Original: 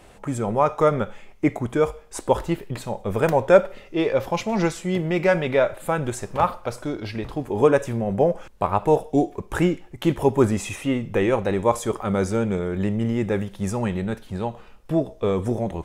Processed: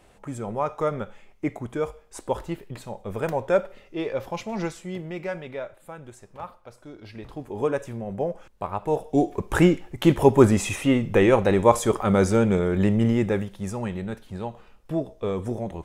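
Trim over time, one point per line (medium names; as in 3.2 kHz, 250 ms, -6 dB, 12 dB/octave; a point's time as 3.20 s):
4.62 s -7 dB
5.93 s -17 dB
6.76 s -17 dB
7.32 s -8 dB
8.83 s -8 dB
9.39 s +3 dB
13.08 s +3 dB
13.63 s -5 dB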